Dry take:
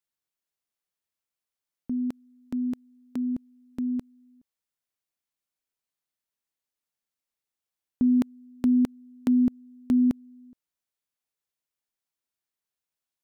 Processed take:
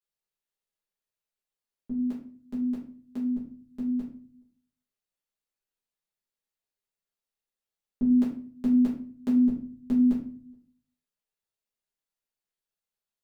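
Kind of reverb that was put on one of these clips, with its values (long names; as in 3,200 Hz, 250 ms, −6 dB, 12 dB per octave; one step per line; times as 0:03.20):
rectangular room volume 39 cubic metres, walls mixed, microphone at 1.4 metres
level −11 dB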